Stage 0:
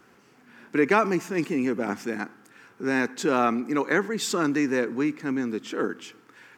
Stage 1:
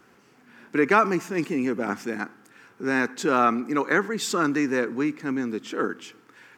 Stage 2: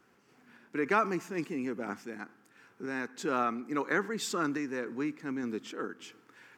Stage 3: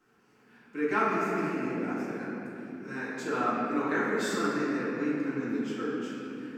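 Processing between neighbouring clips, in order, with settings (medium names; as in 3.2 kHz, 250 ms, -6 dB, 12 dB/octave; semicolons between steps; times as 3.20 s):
dynamic bell 1.3 kHz, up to +5 dB, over -38 dBFS, Q 2.4
random-step tremolo; trim -5.5 dB
reverberation RT60 3.0 s, pre-delay 4 ms, DRR -9.5 dB; trim -8 dB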